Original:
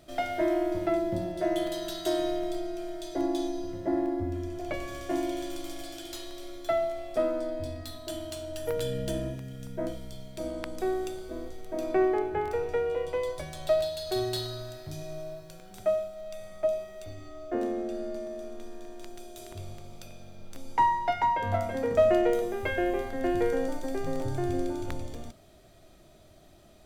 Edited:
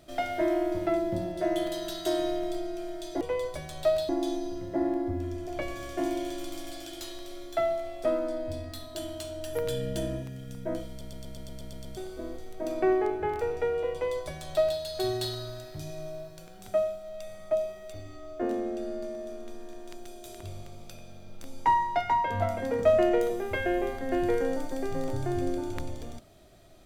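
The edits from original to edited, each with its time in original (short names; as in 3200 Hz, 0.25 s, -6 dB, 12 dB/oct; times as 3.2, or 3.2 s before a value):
10.01 stutter in place 0.12 s, 9 plays
13.05–13.93 copy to 3.21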